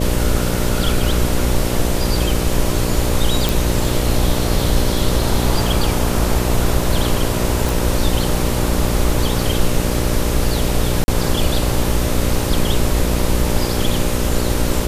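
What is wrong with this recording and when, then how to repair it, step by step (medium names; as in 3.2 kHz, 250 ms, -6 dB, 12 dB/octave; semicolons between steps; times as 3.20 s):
buzz 60 Hz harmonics 10 -21 dBFS
3.49 s: pop
7.69 s: pop
11.04–11.08 s: dropout 40 ms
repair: de-click; de-hum 60 Hz, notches 10; interpolate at 11.04 s, 40 ms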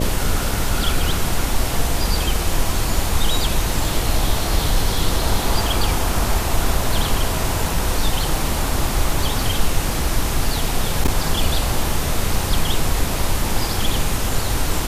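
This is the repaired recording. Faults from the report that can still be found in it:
nothing left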